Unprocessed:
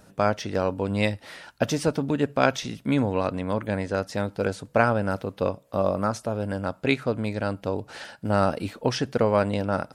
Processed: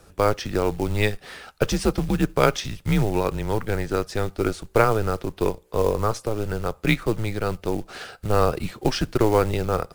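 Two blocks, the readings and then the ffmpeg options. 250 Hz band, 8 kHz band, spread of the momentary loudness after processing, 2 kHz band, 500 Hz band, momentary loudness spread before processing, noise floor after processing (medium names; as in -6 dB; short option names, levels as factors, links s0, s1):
+0.5 dB, +4.0 dB, 8 LU, +0.5 dB, +2.0 dB, 7 LU, -54 dBFS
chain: -af "acrusher=bits=5:mode=log:mix=0:aa=0.000001,afreqshift=-110,volume=1.33"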